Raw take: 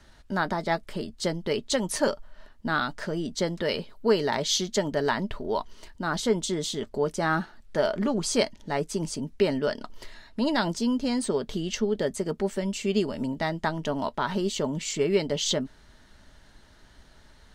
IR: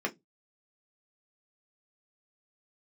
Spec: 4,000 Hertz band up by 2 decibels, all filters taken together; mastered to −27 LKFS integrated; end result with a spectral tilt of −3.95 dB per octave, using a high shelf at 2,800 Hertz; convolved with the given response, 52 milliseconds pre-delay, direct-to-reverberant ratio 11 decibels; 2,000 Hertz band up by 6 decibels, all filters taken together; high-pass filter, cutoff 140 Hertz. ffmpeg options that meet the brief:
-filter_complex "[0:a]highpass=140,equalizer=frequency=2000:width_type=o:gain=9,highshelf=frequency=2800:gain=-5,equalizer=frequency=4000:width_type=o:gain=3.5,asplit=2[link_01][link_02];[1:a]atrim=start_sample=2205,adelay=52[link_03];[link_02][link_03]afir=irnorm=-1:irlink=0,volume=-17.5dB[link_04];[link_01][link_04]amix=inputs=2:normalize=0,volume=-0.5dB"

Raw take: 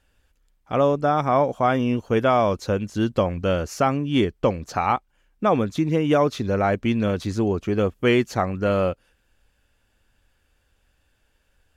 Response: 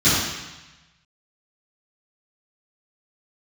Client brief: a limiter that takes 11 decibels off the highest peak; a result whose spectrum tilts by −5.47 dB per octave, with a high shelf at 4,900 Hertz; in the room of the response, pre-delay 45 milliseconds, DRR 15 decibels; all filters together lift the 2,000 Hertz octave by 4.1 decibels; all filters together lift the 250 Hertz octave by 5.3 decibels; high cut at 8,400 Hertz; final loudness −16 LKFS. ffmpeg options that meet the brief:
-filter_complex "[0:a]lowpass=8400,equalizer=frequency=250:width_type=o:gain=6.5,equalizer=frequency=2000:width_type=o:gain=6,highshelf=frequency=4900:gain=-4,alimiter=limit=-16dB:level=0:latency=1,asplit=2[link_01][link_02];[1:a]atrim=start_sample=2205,adelay=45[link_03];[link_02][link_03]afir=irnorm=-1:irlink=0,volume=-36dB[link_04];[link_01][link_04]amix=inputs=2:normalize=0,volume=9.5dB"

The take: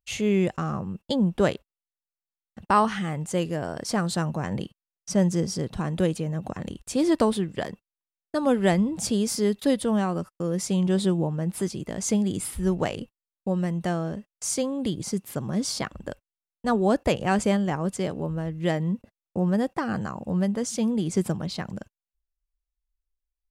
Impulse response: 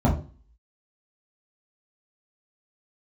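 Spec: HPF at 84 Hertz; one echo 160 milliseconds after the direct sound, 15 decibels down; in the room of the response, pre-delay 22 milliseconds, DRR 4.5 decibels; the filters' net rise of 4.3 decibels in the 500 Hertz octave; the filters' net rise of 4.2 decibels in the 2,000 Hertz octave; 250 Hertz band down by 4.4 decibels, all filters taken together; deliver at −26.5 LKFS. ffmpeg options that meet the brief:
-filter_complex "[0:a]highpass=84,equalizer=frequency=250:width_type=o:gain=-8.5,equalizer=frequency=500:width_type=o:gain=7.5,equalizer=frequency=2000:width_type=o:gain=5,aecho=1:1:160:0.178,asplit=2[link_01][link_02];[1:a]atrim=start_sample=2205,adelay=22[link_03];[link_02][link_03]afir=irnorm=-1:irlink=0,volume=-19.5dB[link_04];[link_01][link_04]amix=inputs=2:normalize=0,volume=-5.5dB"

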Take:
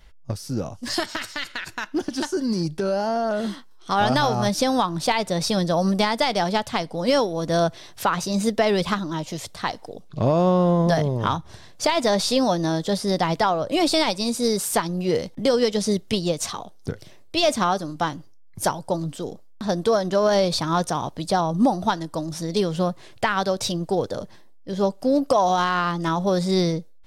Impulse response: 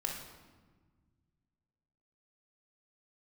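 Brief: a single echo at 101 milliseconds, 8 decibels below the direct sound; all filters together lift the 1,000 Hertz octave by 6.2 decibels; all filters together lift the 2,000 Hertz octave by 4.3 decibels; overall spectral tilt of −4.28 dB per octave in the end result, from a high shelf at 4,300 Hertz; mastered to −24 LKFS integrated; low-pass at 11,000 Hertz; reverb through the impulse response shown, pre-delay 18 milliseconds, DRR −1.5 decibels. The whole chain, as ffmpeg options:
-filter_complex "[0:a]lowpass=11000,equalizer=frequency=1000:width_type=o:gain=7.5,equalizer=frequency=2000:width_type=o:gain=3.5,highshelf=frequency=4300:gain=-4.5,aecho=1:1:101:0.398,asplit=2[link_01][link_02];[1:a]atrim=start_sample=2205,adelay=18[link_03];[link_02][link_03]afir=irnorm=-1:irlink=0,volume=-1dB[link_04];[link_01][link_04]amix=inputs=2:normalize=0,volume=-8.5dB"

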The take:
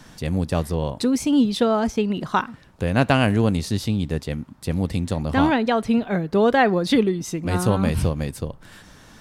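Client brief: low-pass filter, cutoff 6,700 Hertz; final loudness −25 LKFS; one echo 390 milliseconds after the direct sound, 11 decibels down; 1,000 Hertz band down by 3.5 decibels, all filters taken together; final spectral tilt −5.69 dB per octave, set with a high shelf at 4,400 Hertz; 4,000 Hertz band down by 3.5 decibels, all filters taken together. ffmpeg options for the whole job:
ffmpeg -i in.wav -af "lowpass=6700,equalizer=frequency=1000:width_type=o:gain=-5,equalizer=frequency=4000:width_type=o:gain=-8,highshelf=frequency=4400:gain=8,aecho=1:1:390:0.282,volume=-3dB" out.wav

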